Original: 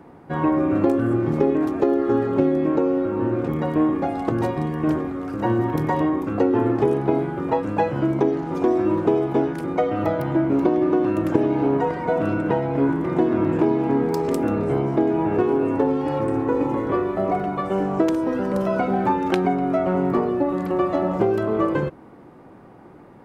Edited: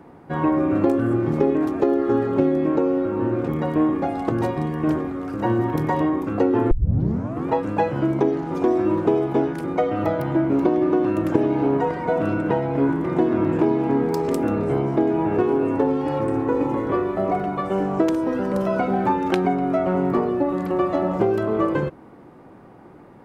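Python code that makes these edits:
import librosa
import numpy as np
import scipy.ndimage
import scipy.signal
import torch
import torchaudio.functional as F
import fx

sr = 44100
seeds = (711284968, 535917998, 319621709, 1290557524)

y = fx.edit(x, sr, fx.tape_start(start_s=6.71, length_s=0.77), tone=tone)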